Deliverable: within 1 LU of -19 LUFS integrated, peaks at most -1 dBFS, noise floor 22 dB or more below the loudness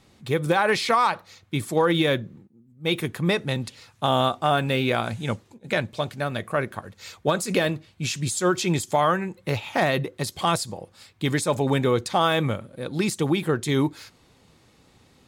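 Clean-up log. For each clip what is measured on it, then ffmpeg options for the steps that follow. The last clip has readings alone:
loudness -24.5 LUFS; peak level -8.0 dBFS; loudness target -19.0 LUFS
-> -af "volume=1.88"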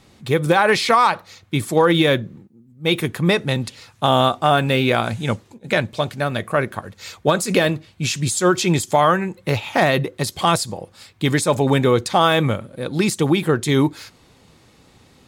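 loudness -19.0 LUFS; peak level -3.0 dBFS; noise floor -53 dBFS

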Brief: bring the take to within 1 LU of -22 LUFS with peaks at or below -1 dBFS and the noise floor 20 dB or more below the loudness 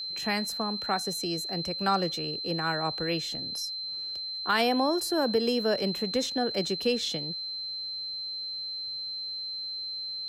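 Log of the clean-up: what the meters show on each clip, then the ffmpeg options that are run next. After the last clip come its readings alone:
steady tone 4.1 kHz; tone level -33 dBFS; loudness -29.5 LUFS; peak level -13.5 dBFS; loudness target -22.0 LUFS
-> -af "bandreject=f=4100:w=30"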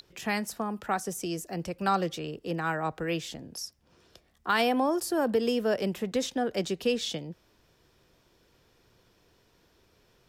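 steady tone not found; loudness -30.0 LUFS; peak level -14.5 dBFS; loudness target -22.0 LUFS
-> -af "volume=2.51"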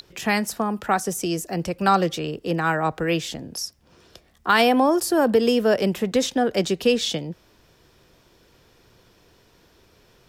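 loudness -22.0 LUFS; peak level -6.5 dBFS; noise floor -58 dBFS

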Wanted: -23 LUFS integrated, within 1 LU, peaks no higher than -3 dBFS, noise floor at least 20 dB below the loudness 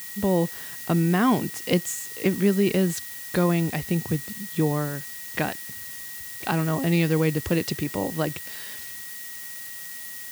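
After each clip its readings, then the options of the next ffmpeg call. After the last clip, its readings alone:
steady tone 1.9 kHz; tone level -43 dBFS; noise floor -38 dBFS; noise floor target -46 dBFS; loudness -26.0 LUFS; peak level -8.0 dBFS; loudness target -23.0 LUFS
-> -af "bandreject=f=1900:w=30"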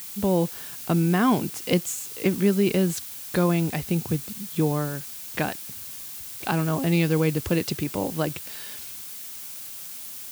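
steady tone not found; noise floor -38 dBFS; noise floor target -46 dBFS
-> -af "afftdn=nr=8:nf=-38"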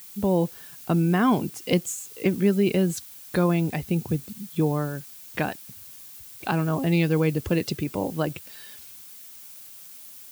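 noise floor -45 dBFS; loudness -25.0 LUFS; peak level -9.0 dBFS; loudness target -23.0 LUFS
-> -af "volume=1.26"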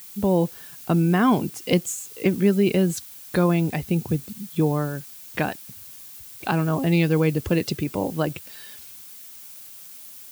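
loudness -23.0 LUFS; peak level -7.0 dBFS; noise floor -43 dBFS

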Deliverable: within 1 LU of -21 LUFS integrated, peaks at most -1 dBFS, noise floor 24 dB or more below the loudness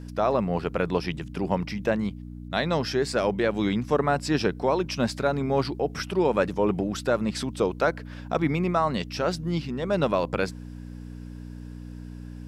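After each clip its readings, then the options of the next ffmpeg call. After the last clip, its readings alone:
hum 60 Hz; highest harmonic 300 Hz; hum level -36 dBFS; loudness -26.5 LUFS; peak level -9.5 dBFS; loudness target -21.0 LUFS
-> -af "bandreject=f=60:t=h:w=4,bandreject=f=120:t=h:w=4,bandreject=f=180:t=h:w=4,bandreject=f=240:t=h:w=4,bandreject=f=300:t=h:w=4"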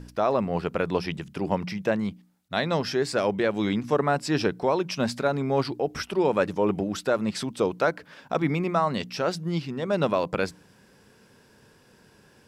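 hum not found; loudness -26.5 LUFS; peak level -9.5 dBFS; loudness target -21.0 LUFS
-> -af "volume=1.88"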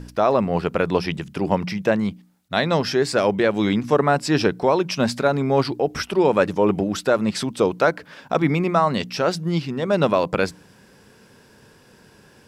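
loudness -21.0 LUFS; peak level -4.0 dBFS; noise floor -52 dBFS

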